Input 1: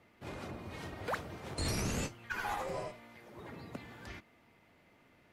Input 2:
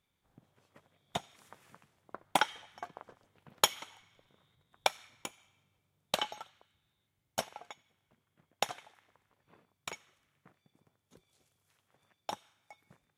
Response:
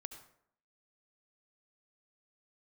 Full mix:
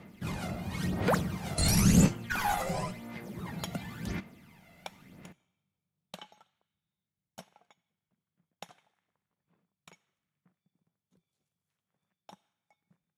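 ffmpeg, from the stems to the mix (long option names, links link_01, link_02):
-filter_complex "[0:a]aemphasis=mode=production:type=cd,aphaser=in_gain=1:out_gain=1:delay=1.5:decay=0.58:speed=0.95:type=sinusoidal,volume=2dB,asplit=2[link_01][link_02];[link_02]volume=-11.5dB[link_03];[1:a]volume=-15.5dB,asplit=2[link_04][link_05];[link_05]volume=-15.5dB[link_06];[2:a]atrim=start_sample=2205[link_07];[link_03][link_06]amix=inputs=2:normalize=0[link_08];[link_08][link_07]afir=irnorm=-1:irlink=0[link_09];[link_01][link_04][link_09]amix=inputs=3:normalize=0,equalizer=frequency=180:width=2.2:gain=13.5"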